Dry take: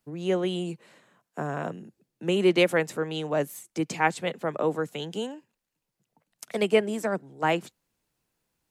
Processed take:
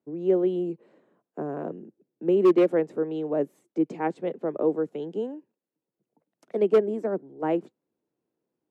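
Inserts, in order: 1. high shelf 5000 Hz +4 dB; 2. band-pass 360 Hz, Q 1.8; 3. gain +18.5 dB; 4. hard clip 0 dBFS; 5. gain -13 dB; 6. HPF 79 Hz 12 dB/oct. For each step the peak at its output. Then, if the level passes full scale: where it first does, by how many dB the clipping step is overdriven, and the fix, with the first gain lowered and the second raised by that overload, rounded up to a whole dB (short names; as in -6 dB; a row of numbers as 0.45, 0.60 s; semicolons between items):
-7.5, -13.0, +5.5, 0.0, -13.0, -11.0 dBFS; step 3, 5.5 dB; step 3 +12.5 dB, step 5 -7 dB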